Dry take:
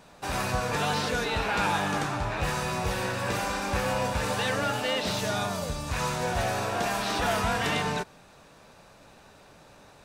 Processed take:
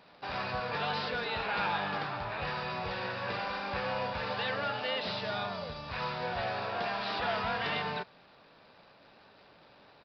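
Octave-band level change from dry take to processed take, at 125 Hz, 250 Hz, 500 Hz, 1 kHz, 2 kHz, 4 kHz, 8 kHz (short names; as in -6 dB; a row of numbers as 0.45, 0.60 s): -10.5 dB, -10.0 dB, -6.0 dB, -5.0 dB, -4.5 dB, -5.0 dB, under -25 dB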